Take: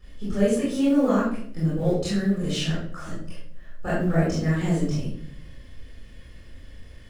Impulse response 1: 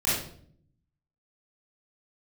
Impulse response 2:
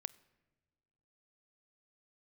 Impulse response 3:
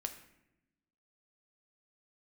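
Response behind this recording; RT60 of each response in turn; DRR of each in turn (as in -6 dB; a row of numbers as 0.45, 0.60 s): 1; 0.60, 1.6, 0.90 s; -10.5, 18.5, 6.0 dB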